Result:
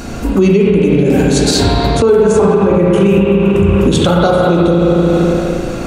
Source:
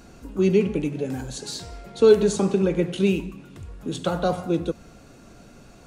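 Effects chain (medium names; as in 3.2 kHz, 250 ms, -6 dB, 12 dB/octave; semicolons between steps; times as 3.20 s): 1.60–3.79 s: fifteen-band graphic EQ 100 Hz +9 dB, 1 kHz +8 dB, 4 kHz -12 dB; spring tank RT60 2.6 s, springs 35/57 ms, chirp 35 ms, DRR -2.5 dB; compression 6:1, threshold -26 dBFS, peak gain reduction 17.5 dB; loudness maximiser +22.5 dB; trim -1 dB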